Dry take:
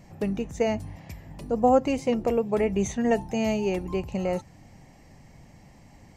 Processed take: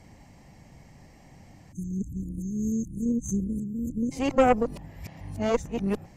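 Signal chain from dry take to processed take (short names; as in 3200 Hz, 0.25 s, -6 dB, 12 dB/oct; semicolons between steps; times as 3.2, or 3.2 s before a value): whole clip reversed; spectral delete 1.72–4.12, 330–6100 Hz; added harmonics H 4 -13 dB, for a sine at -8.5 dBFS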